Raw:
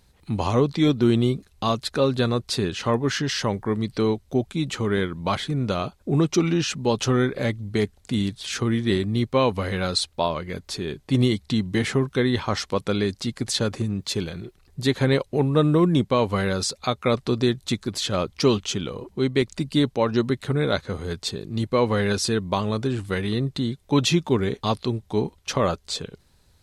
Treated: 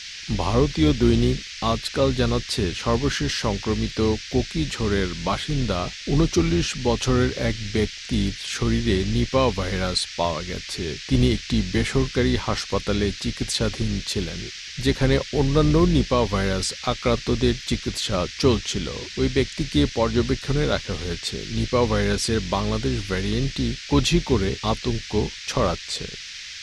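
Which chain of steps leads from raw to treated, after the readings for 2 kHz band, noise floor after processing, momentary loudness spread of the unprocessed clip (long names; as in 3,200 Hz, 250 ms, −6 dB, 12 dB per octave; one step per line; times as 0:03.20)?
+2.0 dB, −37 dBFS, 7 LU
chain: sub-octave generator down 2 octaves, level −4 dB
noise in a band 1,700–5,900 Hz −37 dBFS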